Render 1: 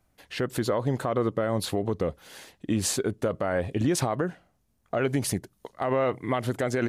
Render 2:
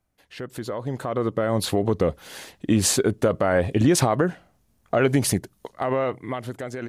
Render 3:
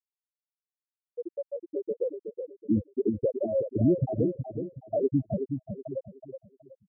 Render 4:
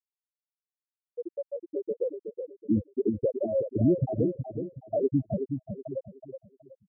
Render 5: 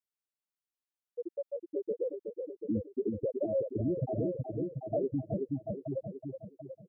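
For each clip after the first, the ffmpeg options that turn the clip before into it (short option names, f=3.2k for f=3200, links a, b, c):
-af "dynaudnorm=f=240:g=11:m=15dB,volume=-6.5dB"
-filter_complex "[0:a]afftfilt=real='re*gte(hypot(re,im),0.708)':imag='im*gte(hypot(re,im),0.708)':win_size=1024:overlap=0.75,asplit=2[a][b];[b]adelay=372,lowpass=f=1.1k:p=1,volume=-6.5dB,asplit=2[c][d];[d]adelay=372,lowpass=f=1.1k:p=1,volume=0.34,asplit=2[e][f];[f]adelay=372,lowpass=f=1.1k:p=1,volume=0.34,asplit=2[g][h];[h]adelay=372,lowpass=f=1.1k:p=1,volume=0.34[i];[c][e][g][i]amix=inputs=4:normalize=0[j];[a][j]amix=inputs=2:normalize=0,volume=-3.5dB"
-af anull
-af "alimiter=limit=-21.5dB:level=0:latency=1:release=105,aecho=1:1:738|1476|2214:0.398|0.0637|0.0102,volume=-2.5dB"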